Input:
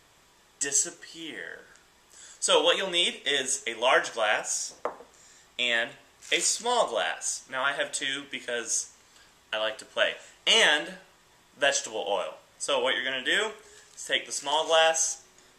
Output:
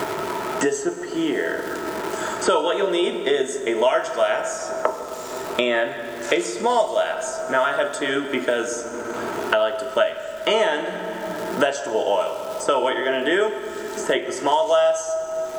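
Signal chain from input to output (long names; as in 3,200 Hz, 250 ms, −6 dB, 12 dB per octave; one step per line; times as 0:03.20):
low-shelf EQ 300 Hz +11.5 dB
surface crackle 500 per second −40 dBFS
hollow resonant body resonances 400/640/900/1,300 Hz, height 16 dB, ringing for 35 ms
convolution reverb RT60 1.8 s, pre-delay 7 ms, DRR 8 dB
multiband upward and downward compressor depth 100%
level −5 dB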